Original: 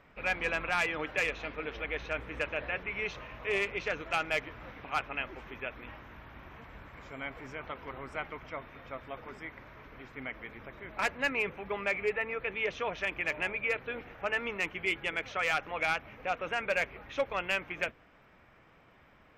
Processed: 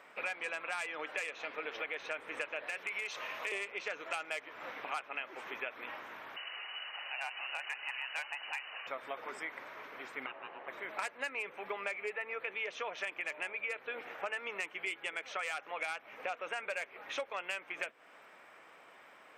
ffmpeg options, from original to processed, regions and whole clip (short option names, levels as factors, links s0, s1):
-filter_complex "[0:a]asettb=1/sr,asplit=3[s0][s1][s2];[s0]atrim=end=2.674[s3];[s1]atrim=start=2.67:end=3.52,asetpts=PTS-STARTPTS,afade=t=in:d=0.004:c=qsin,afade=t=out:st=0.846:d=0.004:c=qsin,highshelf=f=3300:g=9,acrossover=split=540|1500[s4][s5][s6];[s4]acompressor=threshold=0.00501:ratio=4[s7];[s5]acompressor=threshold=0.00708:ratio=4[s8];[s6]acompressor=threshold=0.02:ratio=4[s9];[s7][s8][s9]amix=inputs=3:normalize=0,volume=22.4,asoftclip=hard,volume=0.0447[s10];[s2]atrim=start=3.516[s11];[s3][s10]acrossfade=d=0.004:c1=hsin:c2=qsin[s12];[s12][s11]acrossfade=d=0.004:c1=qsin:c2=hsin,asettb=1/sr,asplit=3[s13][s14][s15];[s13]atrim=end=6.364[s16];[s14]atrim=start=6.36:end=8.87,asetpts=PTS-STARTPTS,afade=t=in:d=0.004:c=qsin,afade=t=out:st=2.506:d=0.004:c=qsin,lowpass=f=2600:t=q:w=0.5098,lowpass=f=2600:t=q:w=0.6013,lowpass=f=2600:t=q:w=0.9,lowpass=f=2600:t=q:w=2.563,afreqshift=-3000,volume=35.5,asoftclip=hard,volume=0.0282[s17];[s15]atrim=start=8.866[s18];[s16][s17]acrossfade=d=0.004:c1=hsin:c2=qsin[s19];[s19][s18]acrossfade=d=0.004:c1=qsin:c2=hsin,asettb=1/sr,asplit=3[s20][s21][s22];[s20]atrim=end=10.264[s23];[s21]atrim=start=10.26:end=10.68,asetpts=PTS-STARTPTS,afade=t=in:d=0.004:c=qsin,afade=t=out:st=0.416:d=0.004:c=qsin,lowpass=1500,aeval=exprs='val(0)*sin(2*PI*610*n/s)':c=same[s24];[s22]atrim=start=10.676[s25];[s23][s24]acrossfade=d=0.004:c1=hsin:c2=qsin[s26];[s26][s25]acrossfade=d=0.004:c1=qsin:c2=hsin,highpass=470,equalizer=f=8500:t=o:w=0.37:g=13.5,acompressor=threshold=0.00891:ratio=6,volume=1.78"